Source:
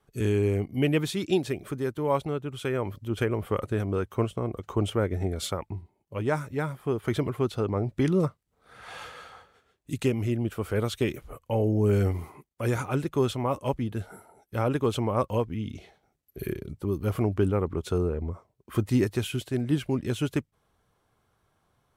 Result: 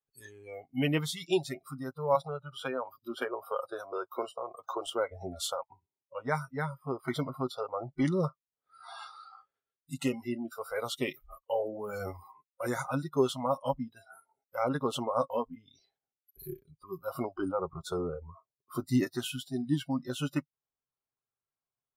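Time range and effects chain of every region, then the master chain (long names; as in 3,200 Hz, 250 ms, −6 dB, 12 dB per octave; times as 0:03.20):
0:02.15–0:04.87: high-pass filter 220 Hz 6 dB per octave + notch filter 2,000 Hz, Q 5.9 + multiband upward and downward compressor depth 70%
whole clip: noise reduction from a noise print of the clip's start 27 dB; low-shelf EQ 250 Hz −5.5 dB; comb filter 7.4 ms, depth 44%; level −1.5 dB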